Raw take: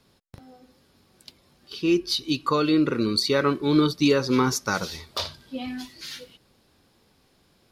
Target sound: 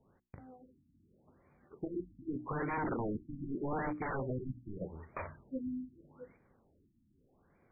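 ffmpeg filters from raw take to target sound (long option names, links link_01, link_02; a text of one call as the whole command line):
ffmpeg -i in.wav -af "bandreject=frequency=60:width_type=h:width=6,bandreject=frequency=120:width_type=h:width=6,bandreject=frequency=180:width_type=h:width=6,bandreject=frequency=240:width_type=h:width=6,bandreject=frequency=300:width_type=h:width=6,bandreject=frequency=360:width_type=h:width=6,aeval=exprs='0.0596*(abs(mod(val(0)/0.0596+3,4)-2)-1)':channel_layout=same,afftfilt=real='re*lt(b*sr/1024,310*pow(2500/310,0.5+0.5*sin(2*PI*0.82*pts/sr)))':imag='im*lt(b*sr/1024,310*pow(2500/310,0.5+0.5*sin(2*PI*0.82*pts/sr)))':win_size=1024:overlap=0.75,volume=-5dB" out.wav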